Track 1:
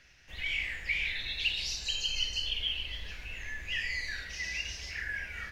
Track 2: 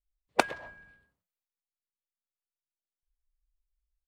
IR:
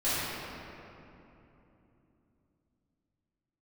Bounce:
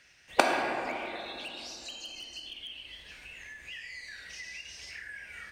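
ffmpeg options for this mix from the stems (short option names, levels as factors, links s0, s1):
-filter_complex "[0:a]equalizer=f=8600:w=5:g=13.5,asoftclip=type=hard:threshold=0.0562,acompressor=threshold=0.00891:ratio=6,volume=1.06[s0];[1:a]volume=0.891,asplit=2[s1][s2];[s2]volume=0.335[s3];[2:a]atrim=start_sample=2205[s4];[s3][s4]afir=irnorm=-1:irlink=0[s5];[s0][s1][s5]amix=inputs=3:normalize=0,highpass=f=210:p=1"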